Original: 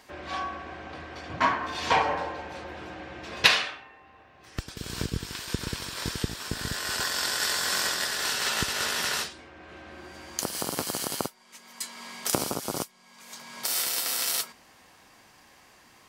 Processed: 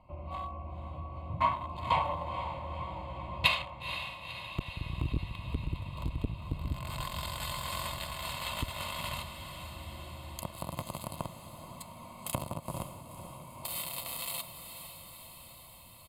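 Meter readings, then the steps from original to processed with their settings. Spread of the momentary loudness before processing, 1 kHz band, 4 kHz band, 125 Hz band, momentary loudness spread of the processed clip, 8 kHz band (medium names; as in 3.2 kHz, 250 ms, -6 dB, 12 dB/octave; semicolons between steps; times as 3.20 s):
16 LU, -4.0 dB, -10.0 dB, +2.0 dB, 16 LU, -14.0 dB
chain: local Wiener filter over 25 samples; bass shelf 470 Hz +8 dB; comb 1.9 ms, depth 59%; in parallel at -0.5 dB: compression, threshold -36 dBFS, peak gain reduction 22.5 dB; on the sum: static phaser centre 1.6 kHz, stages 6; on a send: echo that smears into a reverb 488 ms, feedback 67%, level -9.5 dB; on the sum: transformer saturation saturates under 430 Hz; trim -7 dB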